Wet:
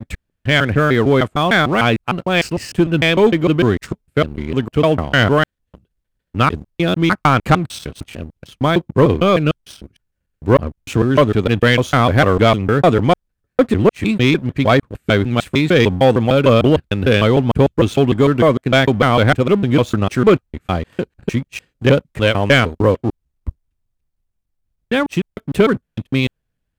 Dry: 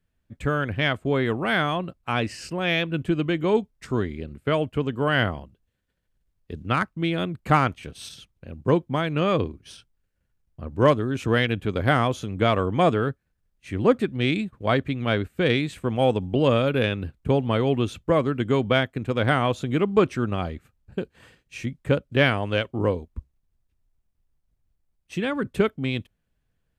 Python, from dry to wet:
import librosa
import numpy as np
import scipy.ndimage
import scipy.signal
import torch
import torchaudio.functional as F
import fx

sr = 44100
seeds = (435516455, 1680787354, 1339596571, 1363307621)

y = fx.block_reorder(x, sr, ms=151.0, group=3)
y = fx.vibrato(y, sr, rate_hz=1.5, depth_cents=28.0)
y = fx.leveller(y, sr, passes=2)
y = y * 10.0 ** (3.0 / 20.0)